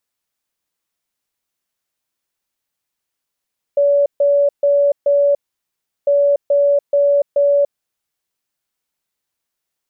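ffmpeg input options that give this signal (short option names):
-f lavfi -i "aevalsrc='0.316*sin(2*PI*570*t)*clip(min(mod(mod(t,2.3),0.43),0.29-mod(mod(t,2.3),0.43))/0.005,0,1)*lt(mod(t,2.3),1.72)':d=4.6:s=44100"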